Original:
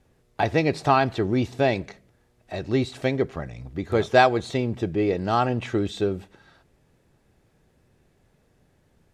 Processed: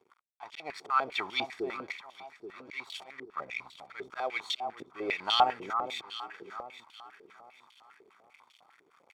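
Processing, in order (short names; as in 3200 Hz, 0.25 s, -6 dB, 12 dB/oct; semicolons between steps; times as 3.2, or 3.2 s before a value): in parallel at +2 dB: compressor 4:1, threshold -36 dBFS, peak gain reduction 20.5 dB; on the sum: auto swell 0.319 s; reverse; upward compressor, threshold -36 dBFS; reverse; crossover distortion -44 dBFS; tilt +3.5 dB/oct; comb 0.9 ms, depth 53%; echo with dull and thin repeats by turns 0.415 s, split 1100 Hz, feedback 57%, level -8 dB; stepped band-pass 10 Hz 410–3100 Hz; gain +6 dB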